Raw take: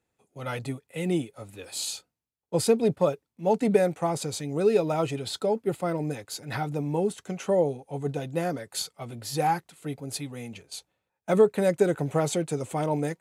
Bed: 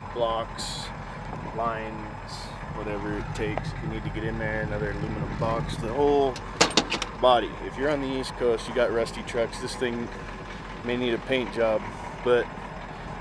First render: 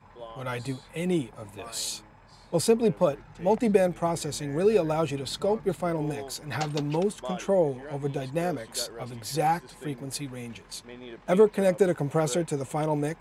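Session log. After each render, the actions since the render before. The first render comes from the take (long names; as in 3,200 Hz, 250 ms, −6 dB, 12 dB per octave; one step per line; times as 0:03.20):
mix in bed −16.5 dB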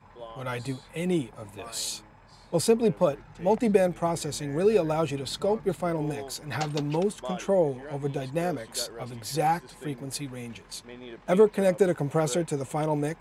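no processing that can be heard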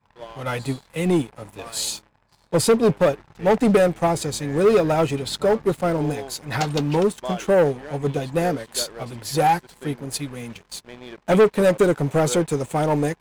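leveller curve on the samples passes 3
expander for the loud parts 1.5 to 1, over −24 dBFS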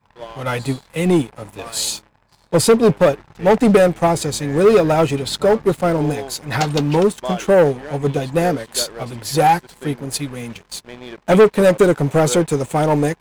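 level +4.5 dB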